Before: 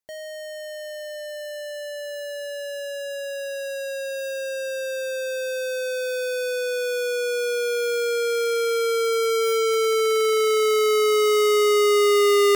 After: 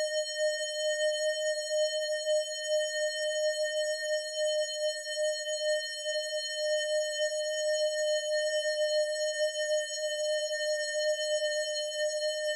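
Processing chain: speaker cabinet 390–9600 Hz, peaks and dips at 1300 Hz -7 dB, 2300 Hz -3 dB, 3700 Hz +8 dB, 6900 Hz +8 dB; Paulstretch 46×, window 0.25 s, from 0.59; gain +3.5 dB

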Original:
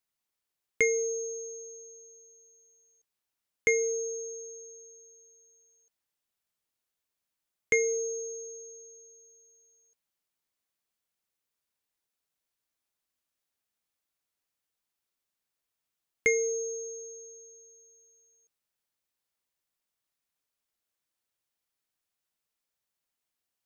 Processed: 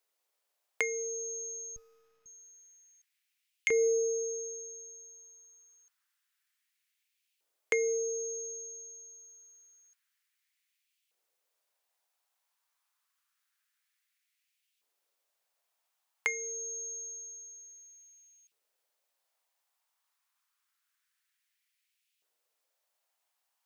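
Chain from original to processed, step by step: compressor 3:1, threshold -36 dBFS, peak gain reduction 12 dB; LFO high-pass saw up 0.27 Hz 440–2700 Hz; 1.76–2.26 running maximum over 9 samples; gain +4 dB

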